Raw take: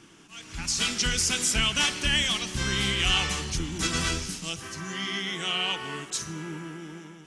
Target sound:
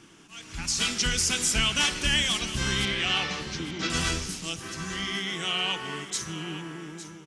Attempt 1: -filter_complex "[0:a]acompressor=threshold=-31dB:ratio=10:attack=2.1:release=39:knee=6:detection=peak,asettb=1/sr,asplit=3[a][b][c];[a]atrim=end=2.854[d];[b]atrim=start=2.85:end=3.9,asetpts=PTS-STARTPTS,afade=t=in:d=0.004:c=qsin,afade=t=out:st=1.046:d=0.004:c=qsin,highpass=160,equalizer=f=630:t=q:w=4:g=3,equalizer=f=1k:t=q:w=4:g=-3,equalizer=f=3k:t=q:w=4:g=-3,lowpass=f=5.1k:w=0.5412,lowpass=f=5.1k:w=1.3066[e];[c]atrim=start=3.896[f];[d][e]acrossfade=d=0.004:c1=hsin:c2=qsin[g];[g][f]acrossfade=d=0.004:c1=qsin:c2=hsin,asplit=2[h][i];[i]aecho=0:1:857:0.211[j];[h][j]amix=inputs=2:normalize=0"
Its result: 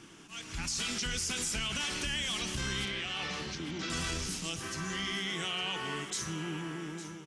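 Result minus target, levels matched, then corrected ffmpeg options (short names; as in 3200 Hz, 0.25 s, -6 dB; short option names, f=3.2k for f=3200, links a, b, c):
compressor: peak gain reduction +13 dB
-filter_complex "[0:a]asettb=1/sr,asplit=3[a][b][c];[a]atrim=end=2.854[d];[b]atrim=start=2.85:end=3.9,asetpts=PTS-STARTPTS,afade=t=in:d=0.004:c=qsin,afade=t=out:st=1.046:d=0.004:c=qsin,highpass=160,equalizer=f=630:t=q:w=4:g=3,equalizer=f=1k:t=q:w=4:g=-3,equalizer=f=3k:t=q:w=4:g=-3,lowpass=f=5.1k:w=0.5412,lowpass=f=5.1k:w=1.3066[e];[c]atrim=start=3.896[f];[d][e]acrossfade=d=0.004:c1=hsin:c2=qsin[g];[g][f]acrossfade=d=0.004:c1=qsin:c2=hsin,asplit=2[h][i];[i]aecho=0:1:857:0.211[j];[h][j]amix=inputs=2:normalize=0"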